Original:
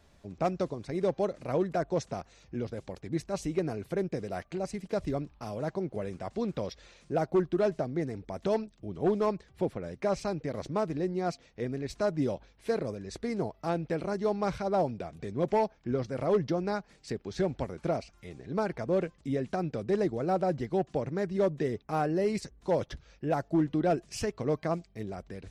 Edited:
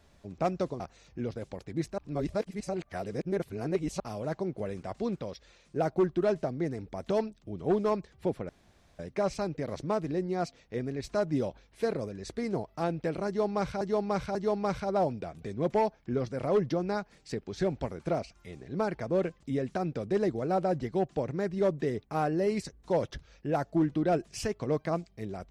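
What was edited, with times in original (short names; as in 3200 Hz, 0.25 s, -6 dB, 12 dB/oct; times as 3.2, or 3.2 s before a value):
0.8–2.16 cut
3.34–5.36 reverse
6.52–7.12 gain -4 dB
9.85 insert room tone 0.50 s
14.13–14.67 loop, 3 plays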